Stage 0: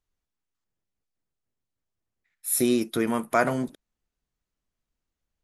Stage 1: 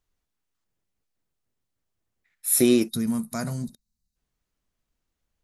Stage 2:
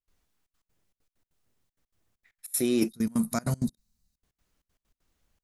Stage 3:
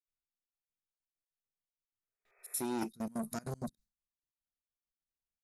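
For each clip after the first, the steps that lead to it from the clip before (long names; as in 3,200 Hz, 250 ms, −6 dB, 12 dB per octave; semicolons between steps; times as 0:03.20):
gain on a spectral selection 0:02.89–0:04.16, 240–3,700 Hz −17 dB; level +4 dB
reversed playback; downward compressor 16 to 1, threshold −28 dBFS, peak gain reduction 15 dB; reversed playback; gate pattern ".xxxxx.x.xxx.x.x" 195 BPM −24 dB; level +6.5 dB
healed spectral selection 0:01.89–0:02.52, 380–2,600 Hz both; noise gate with hold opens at −59 dBFS; saturating transformer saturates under 1,000 Hz; level −8 dB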